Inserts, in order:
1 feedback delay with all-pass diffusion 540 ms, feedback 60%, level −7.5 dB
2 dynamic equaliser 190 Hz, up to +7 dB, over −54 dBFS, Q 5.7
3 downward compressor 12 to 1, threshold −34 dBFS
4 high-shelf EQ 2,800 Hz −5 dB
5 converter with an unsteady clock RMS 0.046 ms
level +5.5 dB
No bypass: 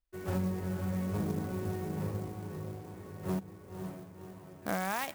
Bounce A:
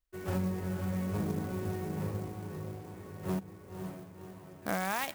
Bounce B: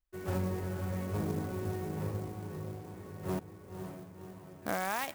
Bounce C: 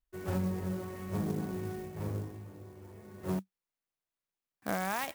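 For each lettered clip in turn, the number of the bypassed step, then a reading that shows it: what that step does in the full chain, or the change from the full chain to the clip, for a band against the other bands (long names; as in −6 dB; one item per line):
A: 4, 4 kHz band +1.5 dB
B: 2, 250 Hz band −3.0 dB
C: 1, change in momentary loudness spread +3 LU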